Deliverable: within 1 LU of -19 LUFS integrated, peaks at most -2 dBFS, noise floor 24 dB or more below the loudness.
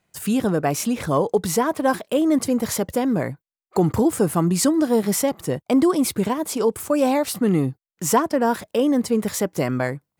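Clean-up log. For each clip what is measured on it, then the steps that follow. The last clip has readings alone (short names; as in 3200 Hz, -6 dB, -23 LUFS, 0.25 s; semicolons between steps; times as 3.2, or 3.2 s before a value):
loudness -21.5 LUFS; peak -8.0 dBFS; loudness target -19.0 LUFS
-> gain +2.5 dB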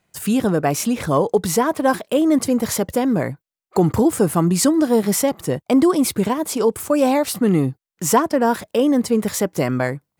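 loudness -19.0 LUFS; peak -5.5 dBFS; noise floor -81 dBFS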